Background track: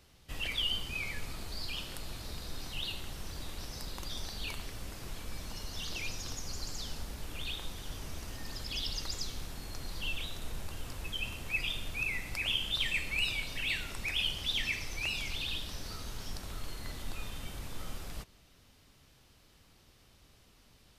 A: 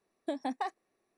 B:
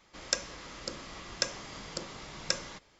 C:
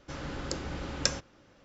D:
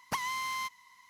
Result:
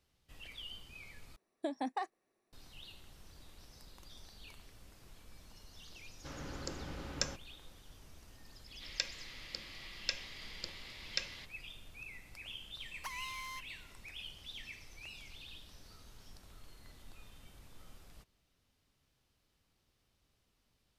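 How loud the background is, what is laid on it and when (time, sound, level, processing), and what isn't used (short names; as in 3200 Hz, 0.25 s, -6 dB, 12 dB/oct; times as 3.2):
background track -15 dB
1.36 replace with A -3 dB
6.16 add C -7.5 dB
8.67 add B -14 dB + band shelf 3000 Hz +13.5 dB
12.92 add D -9 dB + HPF 970 Hz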